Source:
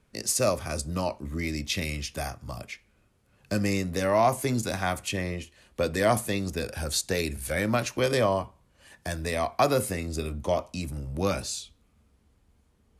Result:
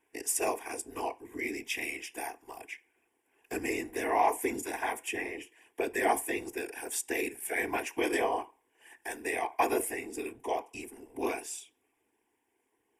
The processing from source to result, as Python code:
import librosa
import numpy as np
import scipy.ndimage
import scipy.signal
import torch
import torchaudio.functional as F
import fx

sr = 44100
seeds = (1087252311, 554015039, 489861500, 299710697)

y = scipy.signal.sosfilt(scipy.signal.butter(4, 290.0, 'highpass', fs=sr, output='sos'), x)
y = fx.notch(y, sr, hz=6400.0, q=9.2)
y = fx.whisperise(y, sr, seeds[0])
y = fx.fixed_phaser(y, sr, hz=860.0, stages=8)